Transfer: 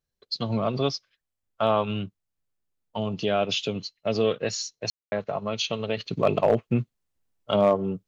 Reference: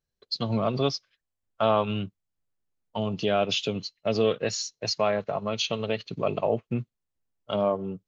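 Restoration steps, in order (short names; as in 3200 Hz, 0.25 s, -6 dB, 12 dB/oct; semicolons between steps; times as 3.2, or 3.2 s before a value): clip repair -11 dBFS; room tone fill 4.9–5.12; gain 0 dB, from 5.97 s -5 dB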